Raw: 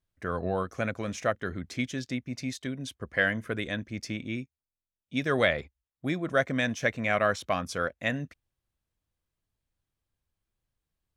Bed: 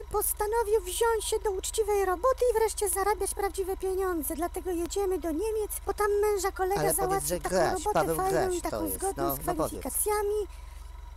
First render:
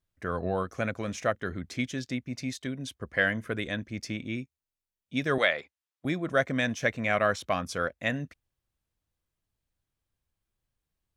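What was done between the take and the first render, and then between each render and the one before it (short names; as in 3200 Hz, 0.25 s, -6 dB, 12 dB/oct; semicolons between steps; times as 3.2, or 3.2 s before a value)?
5.38–6.05 weighting filter A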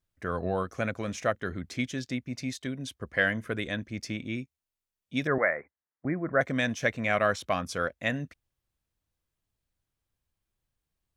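5.27–6.41 steep low-pass 2100 Hz 72 dB/oct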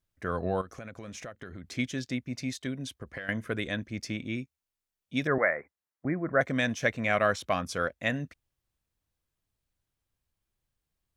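0.61–1.72 compressor 8:1, threshold -38 dBFS; 2.84–3.29 compressor 16:1, threshold -34 dBFS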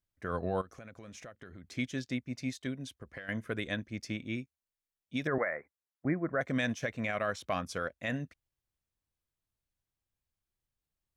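limiter -20.5 dBFS, peak gain reduction 9.5 dB; upward expander 1.5:1, over -40 dBFS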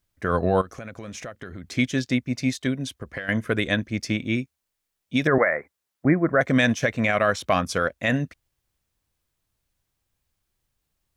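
gain +12 dB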